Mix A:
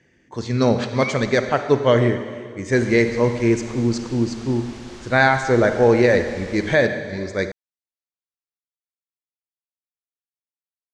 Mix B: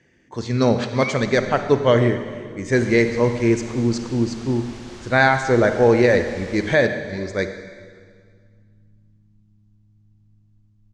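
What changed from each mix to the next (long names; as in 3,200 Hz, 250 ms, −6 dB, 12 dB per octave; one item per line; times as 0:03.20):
first sound: unmuted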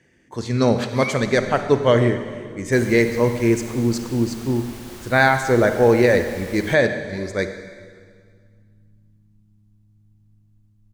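master: remove low-pass filter 7,100 Hz 24 dB per octave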